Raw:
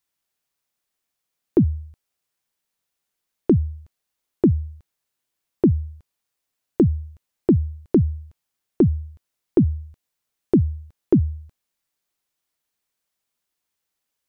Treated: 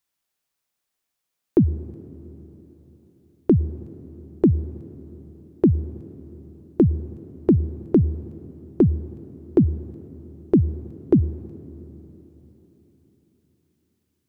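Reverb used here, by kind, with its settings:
dense smooth reverb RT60 4.3 s, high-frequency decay 0.9×, pre-delay 85 ms, DRR 16.5 dB

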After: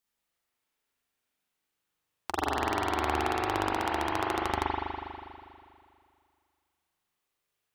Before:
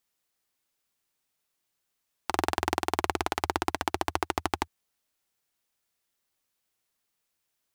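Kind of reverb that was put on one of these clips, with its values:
spring reverb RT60 2.3 s, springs 40 ms, chirp 50 ms, DRR −4.5 dB
level −5 dB

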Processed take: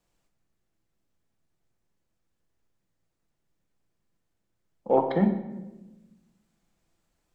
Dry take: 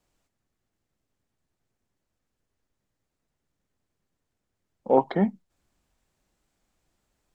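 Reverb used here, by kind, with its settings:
rectangular room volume 520 cubic metres, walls mixed, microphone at 0.75 metres
level −2 dB

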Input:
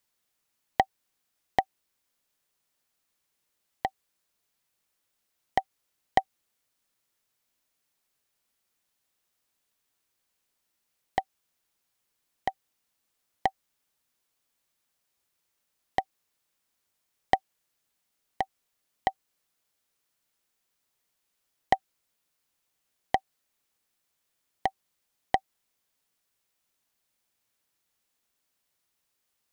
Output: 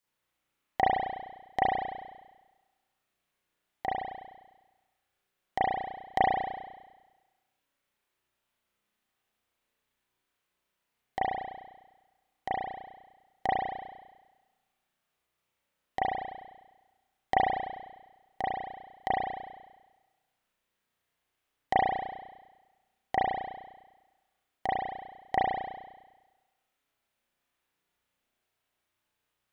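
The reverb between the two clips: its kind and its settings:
spring reverb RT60 1.2 s, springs 33 ms, chirp 50 ms, DRR −9 dB
level −7.5 dB

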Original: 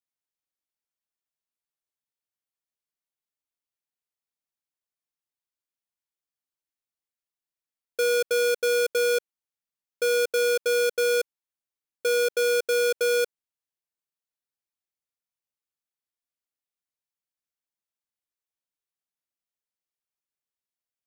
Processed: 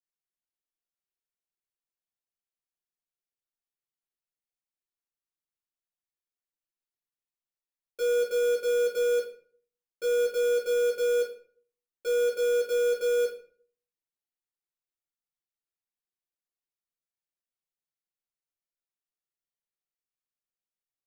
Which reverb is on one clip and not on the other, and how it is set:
rectangular room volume 43 cubic metres, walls mixed, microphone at 1.2 metres
level −13.5 dB

